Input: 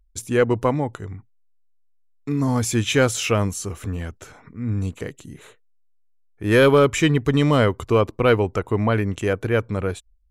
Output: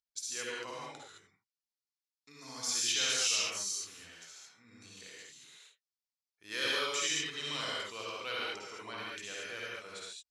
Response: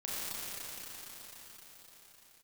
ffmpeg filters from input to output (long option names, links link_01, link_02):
-filter_complex "[0:a]bandpass=frequency=4900:width_type=q:width=2.5:csg=0[link_01];[1:a]atrim=start_sample=2205,atrim=end_sample=6174,asetrate=26901,aresample=44100[link_02];[link_01][link_02]afir=irnorm=-1:irlink=0"